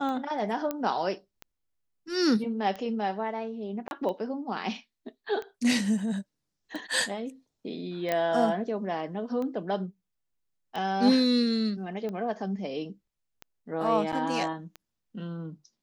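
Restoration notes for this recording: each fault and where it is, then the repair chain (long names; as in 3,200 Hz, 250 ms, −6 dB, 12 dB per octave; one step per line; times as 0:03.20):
scratch tick 45 rpm −24 dBFS
0:00.71: click −16 dBFS
0:03.88–0:03.91: drop-out 31 ms
0:08.12: click −14 dBFS
0:14.12–0:14.13: drop-out 7.4 ms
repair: click removal
repair the gap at 0:03.88, 31 ms
repair the gap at 0:14.12, 7.4 ms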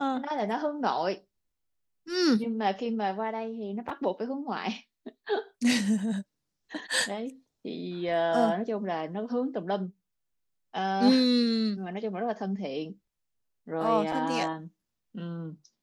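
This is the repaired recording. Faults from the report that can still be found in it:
none of them is left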